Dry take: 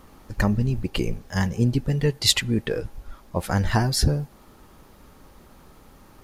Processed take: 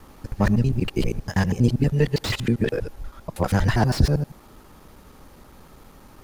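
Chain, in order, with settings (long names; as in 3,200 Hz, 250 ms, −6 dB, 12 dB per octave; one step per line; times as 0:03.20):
reversed piece by piece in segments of 80 ms
slew-rate limiting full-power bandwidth 120 Hz
level +2.5 dB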